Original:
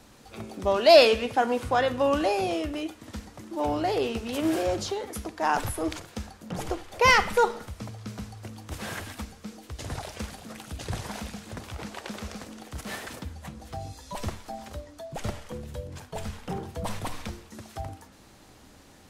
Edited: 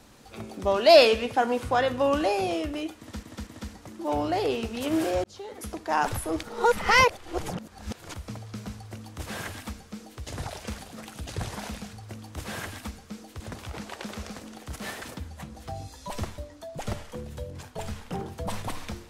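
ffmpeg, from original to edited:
ffmpeg -i in.wav -filter_complex "[0:a]asplit=9[link_01][link_02][link_03][link_04][link_05][link_06][link_07][link_08][link_09];[link_01]atrim=end=3.232[link_10];[link_02]atrim=start=2.988:end=3.232[link_11];[link_03]atrim=start=2.988:end=4.76,asetpts=PTS-STARTPTS,afade=type=out:start_time=1.768:duration=0.004:curve=hsin[link_12];[link_04]atrim=start=4.76:end=5.952,asetpts=PTS-STARTPTS,afade=type=in:duration=0.51[link_13];[link_05]atrim=start=5.948:end=7.662,asetpts=PTS-STARTPTS,areverse[link_14];[link_06]atrim=start=7.658:end=11.452[link_15];[link_07]atrim=start=8.268:end=9.742[link_16];[link_08]atrim=start=11.448:end=14.432[link_17];[link_09]atrim=start=14.748[link_18];[link_10][link_11]acrossfade=duration=0.004:curve1=hsin:curve2=hsin[link_19];[link_12][link_13]concat=n=2:v=0:a=1[link_20];[link_19][link_20]acrossfade=duration=0.004:curve1=hsin:curve2=hsin[link_21];[link_21][link_14]acrossfade=duration=0.004:curve1=hsin:curve2=hsin[link_22];[link_22][link_15]acrossfade=duration=0.004:curve1=hsin:curve2=hsin[link_23];[link_23][link_16]acrossfade=duration=0.004:curve1=hsin:curve2=hsin[link_24];[link_24][link_17]acrossfade=duration=0.004:curve1=hsin:curve2=hsin[link_25];[link_25][link_18]acrossfade=duration=0.004:curve1=hsin:curve2=hsin" out.wav

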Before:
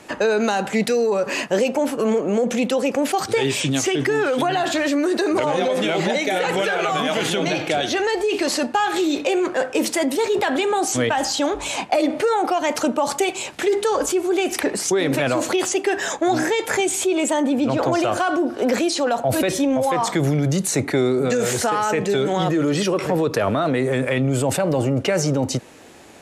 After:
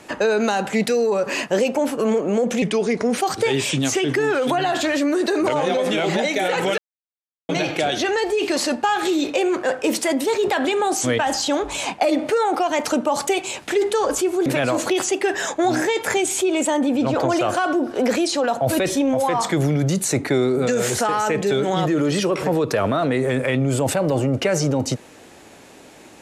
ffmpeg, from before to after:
ffmpeg -i in.wav -filter_complex "[0:a]asplit=6[link_01][link_02][link_03][link_04][link_05][link_06];[link_01]atrim=end=2.624[link_07];[link_02]atrim=start=2.62:end=3.09,asetpts=PTS-STARTPTS,asetrate=37044,aresample=44100[link_08];[link_03]atrim=start=3.086:end=6.69,asetpts=PTS-STARTPTS,afade=type=out:start_time=3.6:duration=0.004:curve=hsin[link_09];[link_04]atrim=start=6.69:end=7.4,asetpts=PTS-STARTPTS,volume=0[link_10];[link_05]atrim=start=7.4:end=14.372,asetpts=PTS-STARTPTS,afade=type=in:duration=0.004:curve=hsin[link_11];[link_06]atrim=start=15.088[link_12];[link_07][link_08]acrossfade=duration=0.004:curve1=hsin:curve2=hsin[link_13];[link_09][link_10][link_11]concat=n=3:v=0:a=1[link_14];[link_13][link_14]acrossfade=duration=0.004:curve1=hsin:curve2=hsin[link_15];[link_15][link_12]acrossfade=duration=0.004:curve1=hsin:curve2=hsin" out.wav

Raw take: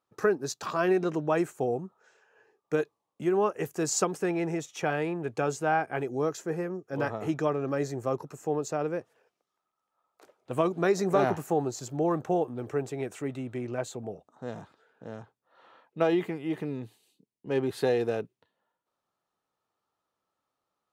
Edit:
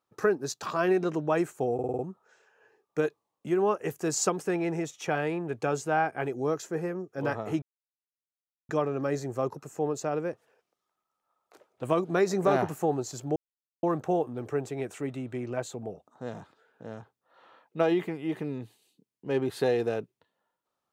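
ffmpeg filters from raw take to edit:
ffmpeg -i in.wav -filter_complex "[0:a]asplit=8[link_01][link_02][link_03][link_04][link_05][link_06][link_07][link_08];[link_01]atrim=end=1.792[link_09];[link_02]atrim=start=1.738:end=1.792[link_10];[link_03]atrim=start=1.738:end=1.792[link_11];[link_04]atrim=start=1.738:end=1.792[link_12];[link_05]atrim=start=1.738:end=1.792[link_13];[link_06]atrim=start=1.738:end=7.37,asetpts=PTS-STARTPTS,afade=type=out:start_time=5.628:duration=0.004:curve=hsin,apad=pad_dur=1.07[link_14];[link_07]atrim=start=7.37:end=12.04,asetpts=PTS-STARTPTS,afade=type=in:duration=0.004:curve=hsin,afade=type=out:start_time=4.666:duration=0.004:curve=hsin,apad=pad_dur=0.47[link_15];[link_08]atrim=start=12.04,asetpts=PTS-STARTPTS,afade=type=in:duration=0.004:curve=hsin[link_16];[link_09][link_10]acrossfade=duration=0.004:curve1=hsin:curve2=hsin[link_17];[link_17][link_11]acrossfade=duration=0.004:curve1=hsin:curve2=hsin[link_18];[link_18][link_12]acrossfade=duration=0.004:curve1=hsin:curve2=hsin[link_19];[link_19][link_13]acrossfade=duration=0.004:curve1=hsin:curve2=hsin[link_20];[link_14][link_15][link_16]concat=n=3:v=0:a=1[link_21];[link_20][link_21]acrossfade=duration=0.004:curve1=hsin:curve2=hsin" out.wav

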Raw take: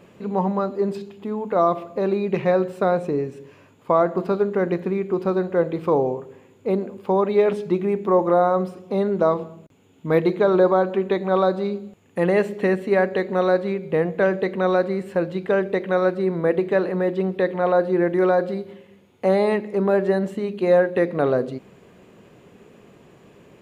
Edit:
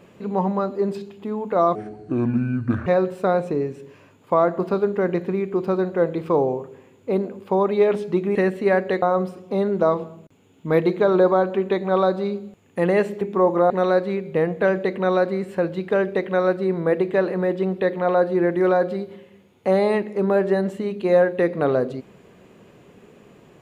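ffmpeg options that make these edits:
ffmpeg -i in.wav -filter_complex "[0:a]asplit=7[link_01][link_02][link_03][link_04][link_05][link_06][link_07];[link_01]atrim=end=1.754[link_08];[link_02]atrim=start=1.75:end=2.44,asetpts=PTS-STARTPTS,asetrate=27342,aresample=44100,atrim=end_sample=49079,asetpts=PTS-STARTPTS[link_09];[link_03]atrim=start=2.436:end=7.932[link_10];[link_04]atrim=start=12.608:end=13.282[link_11];[link_05]atrim=start=8.418:end=12.612[link_12];[link_06]atrim=start=7.928:end=8.422[link_13];[link_07]atrim=start=13.278[link_14];[link_08][link_09]acrossfade=duration=0.004:curve1=hsin:curve2=hsin[link_15];[link_15][link_10]acrossfade=duration=0.004:curve1=hsin:curve2=hsin[link_16];[link_16][link_11]acrossfade=duration=0.004:curve1=hsin:curve2=hsin[link_17];[link_17][link_12]acrossfade=duration=0.004:curve1=hsin:curve2=hsin[link_18];[link_18][link_13]acrossfade=duration=0.004:curve1=hsin:curve2=hsin[link_19];[link_19][link_14]acrossfade=duration=0.004:curve1=hsin:curve2=hsin" out.wav

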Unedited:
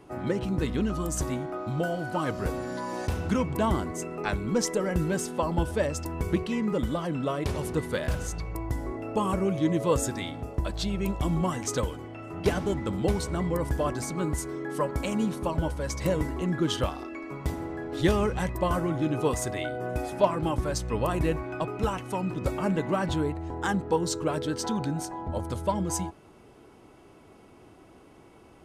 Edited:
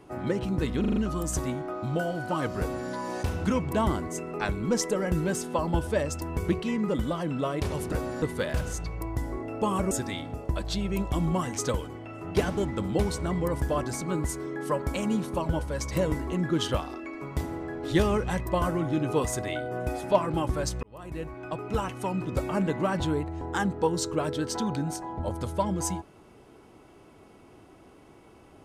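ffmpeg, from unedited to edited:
ffmpeg -i in.wav -filter_complex "[0:a]asplit=9[link_01][link_02][link_03][link_04][link_05][link_06][link_07][link_08][link_09];[link_01]atrim=end=0.842[link_10];[link_02]atrim=start=0.798:end=0.842[link_11];[link_03]atrim=start=0.798:end=0.842[link_12];[link_04]atrim=start=0.798:end=0.842[link_13];[link_05]atrim=start=0.798:end=7.762[link_14];[link_06]atrim=start=2.428:end=2.732[link_15];[link_07]atrim=start=7.758:end=9.452[link_16];[link_08]atrim=start=9.998:end=20.92,asetpts=PTS-STARTPTS,afade=type=out:start_time=10.918:duration=0.004:curve=hsin[link_17];[link_09]atrim=start=20.92,asetpts=PTS-STARTPTS,afade=type=in:duration=1.04[link_18];[link_10][link_11]acrossfade=duration=0.004:curve1=hsin:curve2=hsin[link_19];[link_19][link_12]acrossfade=duration=0.004:curve1=hsin:curve2=hsin[link_20];[link_20][link_13]acrossfade=duration=0.004:curve1=hsin:curve2=hsin[link_21];[link_21][link_14]acrossfade=duration=0.004:curve1=hsin:curve2=hsin[link_22];[link_22][link_15]acrossfade=duration=0.004:curve1=hsin:curve2=hsin[link_23];[link_23][link_16]acrossfade=duration=0.004:curve1=hsin:curve2=hsin[link_24];[link_17][link_18]concat=n=2:v=0:a=1[link_25];[link_24][link_25]acrossfade=duration=0.004:curve1=hsin:curve2=hsin" out.wav

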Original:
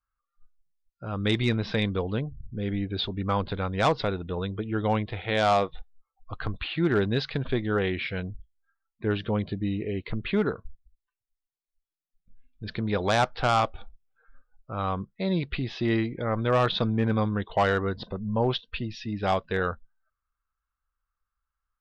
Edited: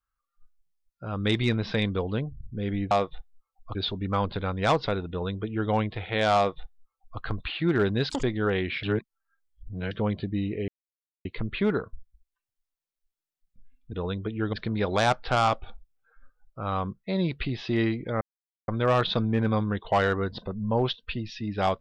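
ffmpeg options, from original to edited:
ffmpeg -i in.wav -filter_complex "[0:a]asplit=11[link_01][link_02][link_03][link_04][link_05][link_06][link_07][link_08][link_09][link_10][link_11];[link_01]atrim=end=2.912[link_12];[link_02]atrim=start=5.518:end=6.362[link_13];[link_03]atrim=start=2.908:end=7.264[link_14];[link_04]atrim=start=7.26:end=7.52,asetpts=PTS-STARTPTS,asetrate=87759,aresample=44100[link_15];[link_05]atrim=start=7.516:end=8.122[link_16];[link_06]atrim=start=8.118:end=9.202,asetpts=PTS-STARTPTS,areverse[link_17];[link_07]atrim=start=9.198:end=9.97,asetpts=PTS-STARTPTS,afade=type=out:start_time=0.768:duration=0.004:curve=hsin,apad=pad_dur=0.57[link_18];[link_08]atrim=start=9.97:end=12.652,asetpts=PTS-STARTPTS,afade=type=in:duration=0.004:curve=hsin[link_19];[link_09]atrim=start=4.258:end=4.862[link_20];[link_10]atrim=start=12.648:end=16.33,asetpts=PTS-STARTPTS,afade=type=out:start_time=3.678:duration=0.004:curve=hsin,apad=pad_dur=0.47[link_21];[link_11]atrim=start=16.33,asetpts=PTS-STARTPTS,afade=type=in:duration=0.004:curve=hsin[link_22];[link_12][link_13]acrossfade=duration=0.004:curve1=hsin:curve2=hsin[link_23];[link_23][link_14]acrossfade=duration=0.004:curve1=hsin:curve2=hsin[link_24];[link_24][link_15]acrossfade=duration=0.004:curve1=hsin:curve2=hsin[link_25];[link_25][link_16]acrossfade=duration=0.004:curve1=hsin:curve2=hsin[link_26];[link_26][link_17]acrossfade=duration=0.004:curve1=hsin:curve2=hsin[link_27];[link_18][link_19]concat=n=2:v=0:a=1[link_28];[link_27][link_28]acrossfade=duration=0.004:curve1=hsin:curve2=hsin[link_29];[link_29][link_20]acrossfade=duration=0.004:curve1=hsin:curve2=hsin[link_30];[link_21][link_22]concat=n=2:v=0:a=1[link_31];[link_30][link_31]acrossfade=duration=0.004:curve1=hsin:curve2=hsin" out.wav

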